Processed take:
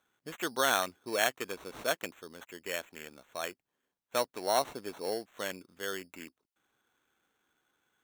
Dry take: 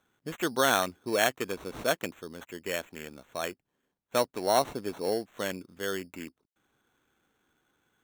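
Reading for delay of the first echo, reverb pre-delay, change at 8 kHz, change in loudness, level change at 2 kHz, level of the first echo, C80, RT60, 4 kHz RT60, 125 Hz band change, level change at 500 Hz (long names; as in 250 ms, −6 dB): no echo audible, no reverb audible, −2.0 dB, −3.5 dB, −2.5 dB, no echo audible, no reverb audible, no reverb audible, no reverb audible, −9.5 dB, −5.0 dB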